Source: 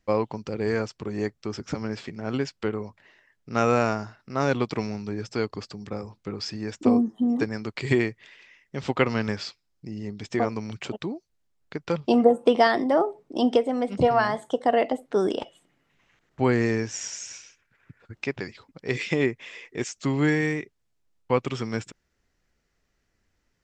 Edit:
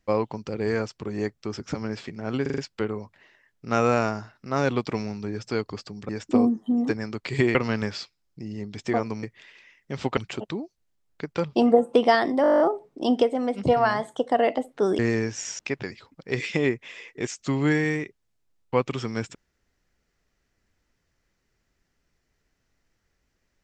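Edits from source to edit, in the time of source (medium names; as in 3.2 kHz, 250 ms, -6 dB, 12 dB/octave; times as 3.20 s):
2.42 s: stutter 0.04 s, 5 plays
5.93–6.61 s: delete
8.07–9.01 s: move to 10.69 s
12.94 s: stutter 0.02 s, 10 plays
15.33–16.55 s: delete
17.15–18.16 s: delete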